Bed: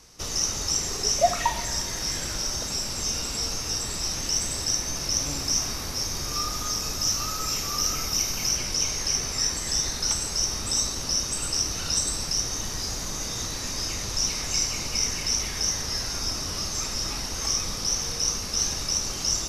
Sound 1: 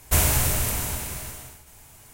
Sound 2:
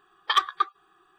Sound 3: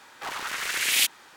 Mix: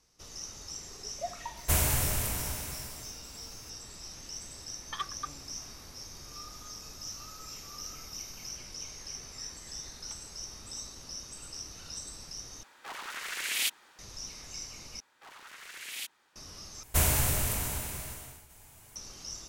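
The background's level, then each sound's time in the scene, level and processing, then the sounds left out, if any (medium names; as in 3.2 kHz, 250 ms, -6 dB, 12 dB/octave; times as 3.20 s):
bed -16.5 dB
1.57 s: add 1 -6.5 dB
4.63 s: add 2 -15 dB
12.63 s: replace with 3 -8 dB + peaking EQ 110 Hz -5.5 dB 1 oct
15.00 s: replace with 3 -17.5 dB
16.83 s: replace with 1 -5.5 dB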